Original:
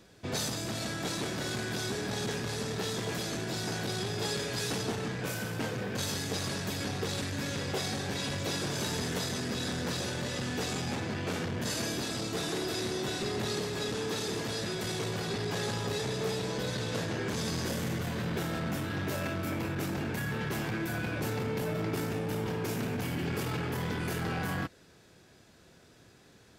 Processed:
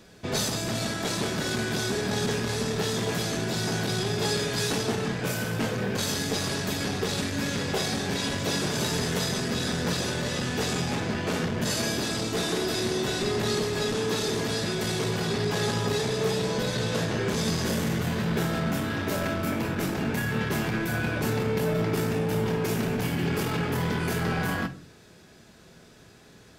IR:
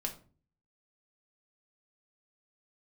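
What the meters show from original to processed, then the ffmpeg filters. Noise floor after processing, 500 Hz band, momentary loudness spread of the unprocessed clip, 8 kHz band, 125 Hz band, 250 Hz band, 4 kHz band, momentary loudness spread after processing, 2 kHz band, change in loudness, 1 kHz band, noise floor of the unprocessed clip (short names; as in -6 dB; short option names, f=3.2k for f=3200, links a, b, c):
-52 dBFS, +6.5 dB, 2 LU, +5.5 dB, +5.5 dB, +6.5 dB, +5.5 dB, 2 LU, +6.0 dB, +6.0 dB, +5.5 dB, -58 dBFS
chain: -filter_complex "[0:a]asplit=2[a][b];[1:a]atrim=start_sample=2205[c];[b][c]afir=irnorm=-1:irlink=0,volume=-0.5dB[d];[a][d]amix=inputs=2:normalize=0"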